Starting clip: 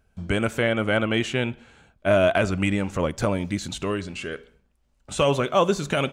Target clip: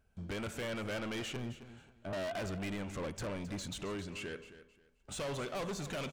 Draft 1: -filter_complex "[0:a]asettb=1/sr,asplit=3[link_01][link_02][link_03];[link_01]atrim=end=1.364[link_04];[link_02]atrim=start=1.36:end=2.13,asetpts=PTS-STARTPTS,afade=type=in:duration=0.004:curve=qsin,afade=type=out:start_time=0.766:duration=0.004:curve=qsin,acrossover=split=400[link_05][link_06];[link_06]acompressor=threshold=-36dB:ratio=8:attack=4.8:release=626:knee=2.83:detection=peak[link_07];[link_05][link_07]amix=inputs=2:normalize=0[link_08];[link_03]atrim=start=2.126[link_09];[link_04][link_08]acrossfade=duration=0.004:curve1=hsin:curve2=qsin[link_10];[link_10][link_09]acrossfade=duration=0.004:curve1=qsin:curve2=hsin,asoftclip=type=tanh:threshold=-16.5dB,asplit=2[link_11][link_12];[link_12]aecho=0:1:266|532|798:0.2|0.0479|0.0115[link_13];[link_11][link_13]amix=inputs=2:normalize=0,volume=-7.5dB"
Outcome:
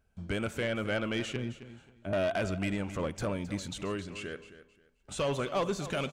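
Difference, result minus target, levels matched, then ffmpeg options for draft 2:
soft clipping: distortion −9 dB
-filter_complex "[0:a]asettb=1/sr,asplit=3[link_01][link_02][link_03];[link_01]atrim=end=1.364[link_04];[link_02]atrim=start=1.36:end=2.13,asetpts=PTS-STARTPTS,afade=type=in:duration=0.004:curve=qsin,afade=type=out:start_time=0.766:duration=0.004:curve=qsin,acrossover=split=400[link_05][link_06];[link_06]acompressor=threshold=-36dB:ratio=8:attack=4.8:release=626:knee=2.83:detection=peak[link_07];[link_05][link_07]amix=inputs=2:normalize=0[link_08];[link_03]atrim=start=2.126[link_09];[link_04][link_08]acrossfade=duration=0.004:curve1=hsin:curve2=qsin[link_10];[link_10][link_09]acrossfade=duration=0.004:curve1=qsin:curve2=hsin,asoftclip=type=tanh:threshold=-28.5dB,asplit=2[link_11][link_12];[link_12]aecho=0:1:266|532|798:0.2|0.0479|0.0115[link_13];[link_11][link_13]amix=inputs=2:normalize=0,volume=-7.5dB"

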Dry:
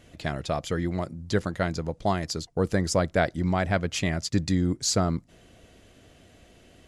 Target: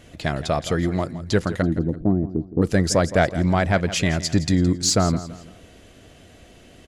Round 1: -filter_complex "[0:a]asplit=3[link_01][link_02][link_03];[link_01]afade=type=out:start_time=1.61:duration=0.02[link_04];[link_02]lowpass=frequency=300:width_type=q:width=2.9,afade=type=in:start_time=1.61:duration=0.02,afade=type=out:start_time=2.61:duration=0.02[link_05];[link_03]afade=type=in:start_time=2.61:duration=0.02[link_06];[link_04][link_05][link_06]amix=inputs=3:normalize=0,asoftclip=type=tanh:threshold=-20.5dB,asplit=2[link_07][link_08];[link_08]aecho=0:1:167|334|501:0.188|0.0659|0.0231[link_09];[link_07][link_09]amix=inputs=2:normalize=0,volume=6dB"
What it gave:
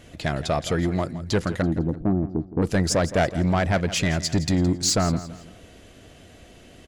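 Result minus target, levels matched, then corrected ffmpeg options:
soft clipping: distortion +11 dB
-filter_complex "[0:a]asplit=3[link_01][link_02][link_03];[link_01]afade=type=out:start_time=1.61:duration=0.02[link_04];[link_02]lowpass=frequency=300:width_type=q:width=2.9,afade=type=in:start_time=1.61:duration=0.02,afade=type=out:start_time=2.61:duration=0.02[link_05];[link_03]afade=type=in:start_time=2.61:duration=0.02[link_06];[link_04][link_05][link_06]amix=inputs=3:normalize=0,asoftclip=type=tanh:threshold=-12dB,asplit=2[link_07][link_08];[link_08]aecho=0:1:167|334|501:0.188|0.0659|0.0231[link_09];[link_07][link_09]amix=inputs=2:normalize=0,volume=6dB"

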